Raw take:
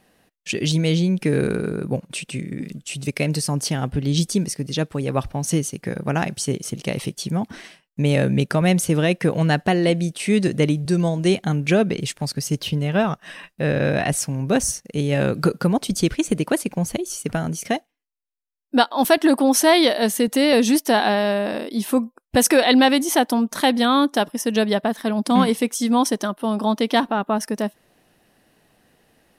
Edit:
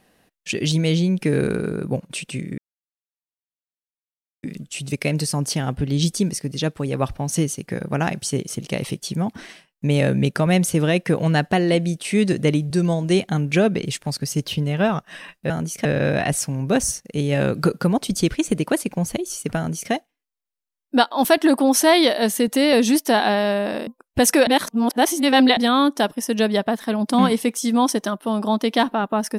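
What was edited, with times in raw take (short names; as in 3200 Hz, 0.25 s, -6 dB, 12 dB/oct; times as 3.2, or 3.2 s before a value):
2.58 insert silence 1.85 s
17.37–17.72 copy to 13.65
21.67–22.04 cut
22.64–23.74 reverse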